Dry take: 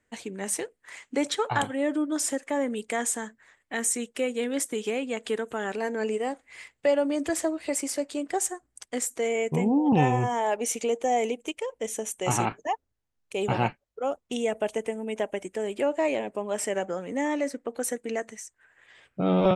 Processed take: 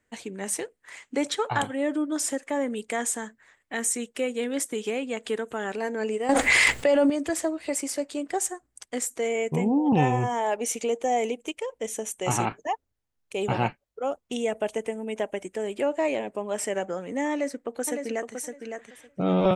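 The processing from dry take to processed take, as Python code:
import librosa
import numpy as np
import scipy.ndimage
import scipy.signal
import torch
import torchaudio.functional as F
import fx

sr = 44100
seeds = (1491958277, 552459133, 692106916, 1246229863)

y = fx.env_flatten(x, sr, amount_pct=100, at=(6.29, 7.1))
y = fx.echo_throw(y, sr, start_s=17.31, length_s=1.03, ms=560, feedback_pct=15, wet_db=-6.0)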